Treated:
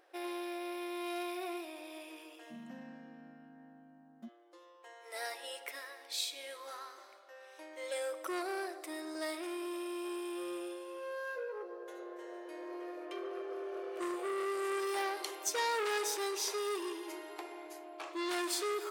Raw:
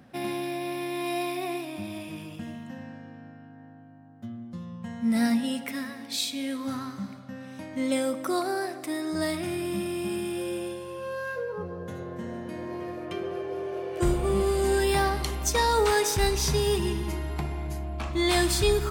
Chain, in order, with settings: brick-wall FIR high-pass 310 Hz, from 2.5 s 160 Hz, from 4.27 s 310 Hz; core saturation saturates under 2000 Hz; gain -7 dB

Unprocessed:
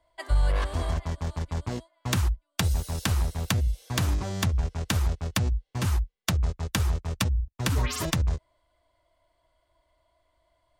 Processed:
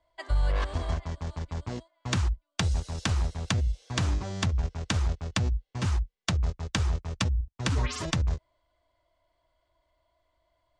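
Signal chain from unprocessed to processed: LPF 7500 Hz 24 dB/oct; in parallel at -2 dB: level quantiser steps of 13 dB; on the sum: gain -5.5 dB

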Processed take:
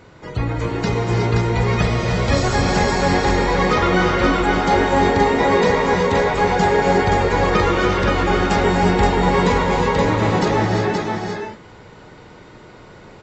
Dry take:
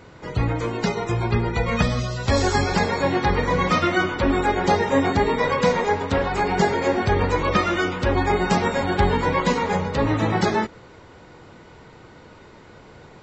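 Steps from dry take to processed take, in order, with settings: echo 0.525 s -3.5 dB; non-linear reverb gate 0.39 s rising, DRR 1.5 dB

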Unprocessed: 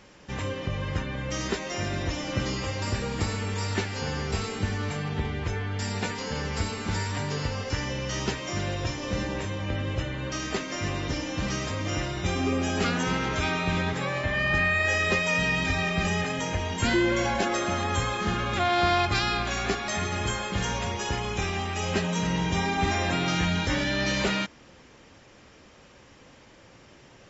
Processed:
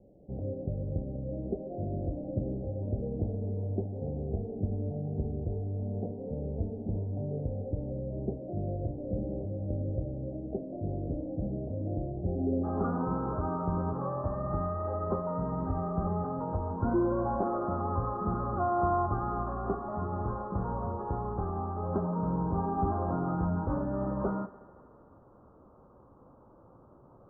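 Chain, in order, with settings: steep low-pass 710 Hz 72 dB/oct, from 12.63 s 1300 Hz; thinning echo 73 ms, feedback 83%, high-pass 170 Hz, level -18 dB; gain -3 dB

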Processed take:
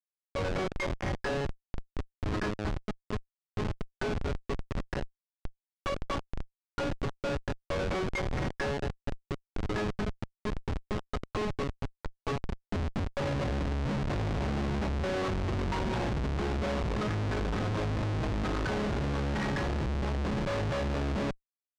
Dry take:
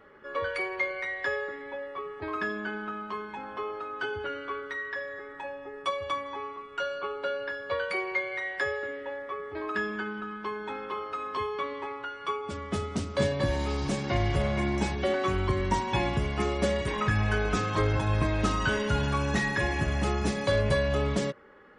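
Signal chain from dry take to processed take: Schmitt trigger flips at -28.5 dBFS; air absorption 110 m

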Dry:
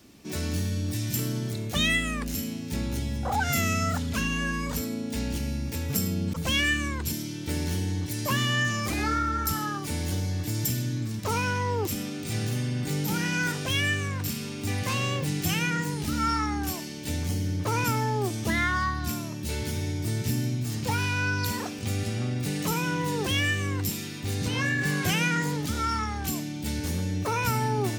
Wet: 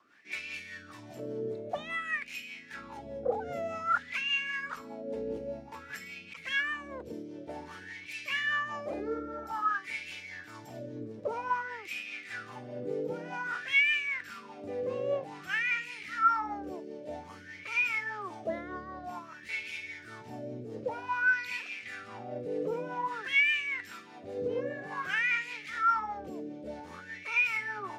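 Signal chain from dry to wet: rotary speaker horn 5 Hz; in parallel at 0 dB: limiter -23 dBFS, peak gain reduction 9 dB; on the sum: wah 0.52 Hz 470–2500 Hz, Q 8.5; notches 50/100/150/200 Hz; gain +8 dB

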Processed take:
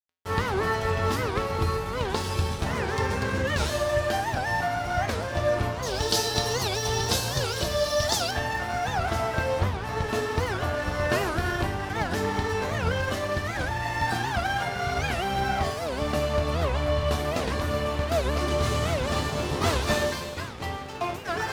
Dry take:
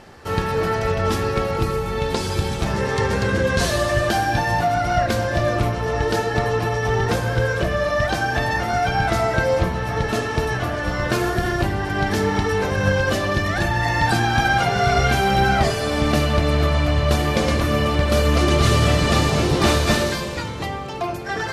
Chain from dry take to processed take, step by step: dynamic EQ 990 Hz, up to +5 dB, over -35 dBFS, Q 2.1; vocal rider within 4 dB 2 s; 5.83–8.31 resonant high shelf 2900 Hz +12.5 dB, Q 1.5; crossover distortion -31.5 dBFS; resonator 85 Hz, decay 0.55 s, harmonics odd, mix 80%; record warp 78 rpm, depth 250 cents; gain +4.5 dB

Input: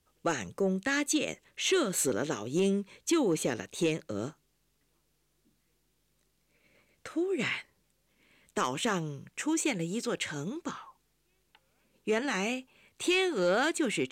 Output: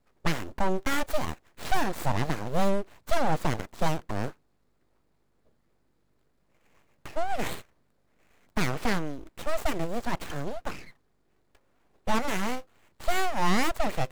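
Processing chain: median filter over 15 samples; full-wave rectifier; gain +6.5 dB

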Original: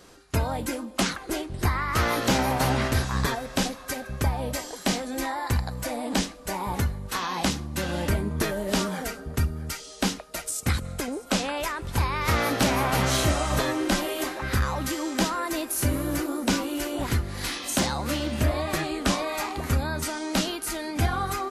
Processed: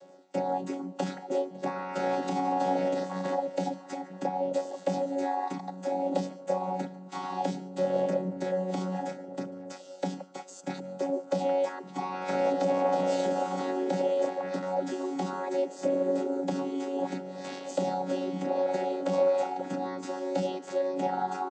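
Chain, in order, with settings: chord vocoder bare fifth, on F#3; high shelf 4100 Hz +8 dB; on a send: echo 0.145 s -23.5 dB; on the sum: limiter -19.5 dBFS, peak gain reduction 9 dB; band shelf 590 Hz +13 dB 1.2 oct; gain -5.5 dB

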